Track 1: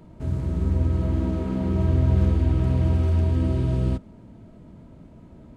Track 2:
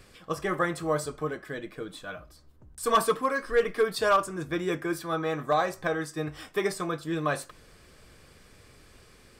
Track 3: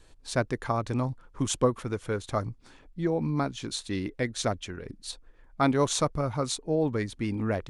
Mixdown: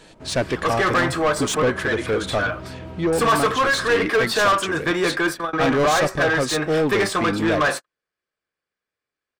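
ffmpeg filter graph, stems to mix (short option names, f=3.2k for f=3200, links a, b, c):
-filter_complex "[0:a]acompressor=threshold=-27dB:ratio=2,volume=-14dB[a];[1:a]equalizer=f=1.6k:w=5:g=4,adelay=350,volume=0.5dB[b];[2:a]equalizer=f=1.1k:t=o:w=0.98:g=-7.5,volume=0dB,asplit=2[c][d];[d]apad=whole_len=429861[e];[b][e]sidechaingate=range=-46dB:threshold=-52dB:ratio=16:detection=peak[f];[a][f][c]amix=inputs=3:normalize=0,asplit=2[g][h];[h]highpass=f=720:p=1,volume=24dB,asoftclip=type=tanh:threshold=-10.5dB[i];[g][i]amix=inputs=2:normalize=0,lowpass=f=3.1k:p=1,volume=-6dB"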